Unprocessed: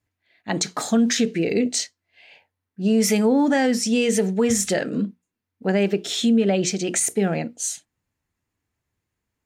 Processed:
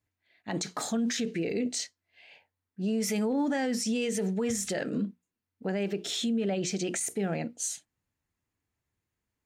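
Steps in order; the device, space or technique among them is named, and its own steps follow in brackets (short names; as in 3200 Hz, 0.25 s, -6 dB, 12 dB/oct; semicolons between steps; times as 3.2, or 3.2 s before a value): clipper into limiter (hard clip -10.5 dBFS, distortion -50 dB; limiter -17.5 dBFS, peak gain reduction 7 dB); gain -5 dB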